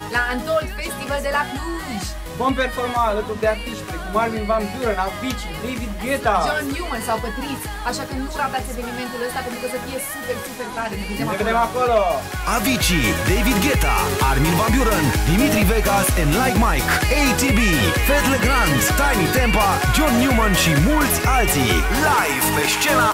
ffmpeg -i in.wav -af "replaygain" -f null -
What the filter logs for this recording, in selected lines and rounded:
track_gain = +0.8 dB
track_peak = 0.257